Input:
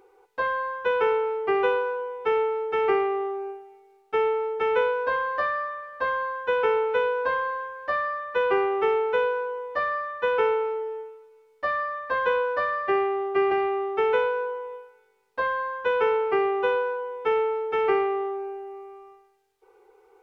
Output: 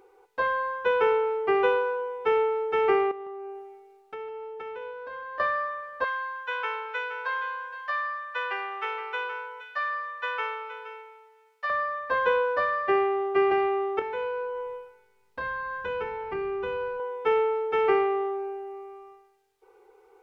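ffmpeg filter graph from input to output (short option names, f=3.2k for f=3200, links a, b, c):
-filter_complex "[0:a]asettb=1/sr,asplit=3[a][b][c];[a]atrim=end=3.114[d];[b]atrim=start=3.11:end=5.4,asetpts=PTS-STARTPTS,afade=t=in:d=0.004:c=qsin,afade=t=out:st=2.286:d=0.004:c=qsin,acompressor=threshold=-36dB:ratio=6:attack=3.2:release=140:knee=1:detection=peak,aecho=1:1:155:0.224,atrim=end_sample=100989[e];[c]atrim=start=5.396[f];[d][e]acrossfade=d=0.004:c1=hsin:c2=qsin[g];[g][f]acrossfade=d=0.004:c1=qsin:c2=hsin,asettb=1/sr,asplit=3[h][i][j];[h]atrim=end=6.044[k];[i]atrim=start=6.04:end=11.7,asetpts=PTS-STARTPTS,afade=t=in:d=0.004:c=qsin,afade=t=out:st=5.656:d=0.004:c=qsin,highpass=1.2k,aecho=1:1:470:0.251,atrim=end_sample=249606[l];[j]atrim=start=11.696[m];[k][l]acrossfade=d=0.004:c1=hsin:c2=qsin[n];[n][m]acrossfade=d=0.004:c1=qsin:c2=hsin,asettb=1/sr,asplit=3[o][p][q];[o]atrim=end=13.994[r];[p]atrim=start=13.99:end=17,asetpts=PTS-STARTPTS,afade=t=in:d=0.004:c=qsin,afade=t=out:st=3.006:d=0.004:c=qsin,asubboost=boost=8:cutoff=210,acompressor=threshold=-31dB:ratio=3:attack=3.2:release=140:knee=1:detection=peak,asplit=2[s][t];[t]adelay=26,volume=-6.5dB[u];[s][u]amix=inputs=2:normalize=0,atrim=end_sample=132741[v];[q]atrim=start=16.996[w];[r][v]acrossfade=d=0.004:c1=hsin:c2=qsin[x];[x][w]acrossfade=d=0.004:c1=qsin:c2=hsin"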